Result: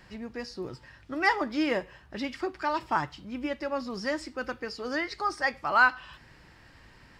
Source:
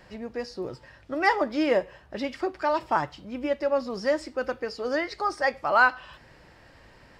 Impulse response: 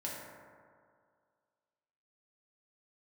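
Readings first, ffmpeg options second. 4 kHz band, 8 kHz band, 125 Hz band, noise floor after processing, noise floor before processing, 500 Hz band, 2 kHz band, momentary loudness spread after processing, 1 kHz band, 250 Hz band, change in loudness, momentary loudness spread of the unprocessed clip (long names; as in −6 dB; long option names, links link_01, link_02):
0.0 dB, can't be measured, −0.5 dB, −56 dBFS, −54 dBFS, −7.0 dB, −0.5 dB, 16 LU, −2.5 dB, −1.5 dB, −3.0 dB, 13 LU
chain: -af "equalizer=frequency=570:width=1.5:gain=-8.5"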